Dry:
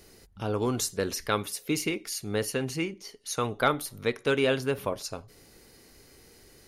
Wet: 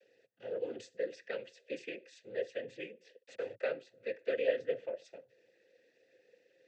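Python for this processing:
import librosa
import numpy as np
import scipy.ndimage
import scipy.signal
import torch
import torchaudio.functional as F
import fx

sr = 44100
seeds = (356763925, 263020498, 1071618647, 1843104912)

y = fx.delta_hold(x, sr, step_db=-31.0, at=(3.22, 3.63))
y = fx.noise_vocoder(y, sr, seeds[0], bands=16)
y = fx.vowel_filter(y, sr, vowel='e')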